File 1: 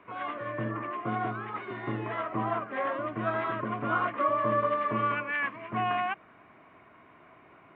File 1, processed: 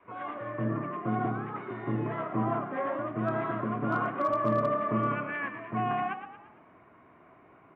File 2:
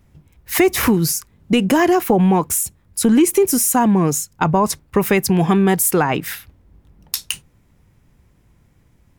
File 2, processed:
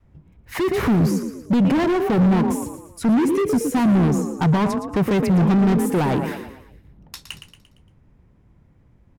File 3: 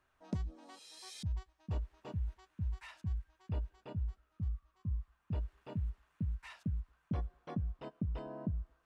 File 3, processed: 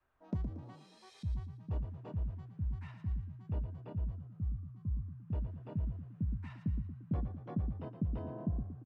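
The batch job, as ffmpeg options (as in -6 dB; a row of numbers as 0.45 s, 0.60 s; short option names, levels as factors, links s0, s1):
-filter_complex "[0:a]lowpass=f=1200:p=1,asplit=6[s0][s1][s2][s3][s4][s5];[s1]adelay=115,afreqshift=32,volume=0.316[s6];[s2]adelay=230,afreqshift=64,volume=0.146[s7];[s3]adelay=345,afreqshift=96,volume=0.0668[s8];[s4]adelay=460,afreqshift=128,volume=0.0309[s9];[s5]adelay=575,afreqshift=160,volume=0.0141[s10];[s0][s6][s7][s8][s9][s10]amix=inputs=6:normalize=0,asoftclip=type=hard:threshold=0.1,adynamicequalizer=threshold=0.0126:dfrequency=180:dqfactor=0.78:tfrequency=180:tqfactor=0.78:attack=5:release=100:ratio=0.375:range=3.5:mode=boostabove:tftype=bell"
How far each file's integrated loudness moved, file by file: -0.5 LU, -2.5 LU, +1.5 LU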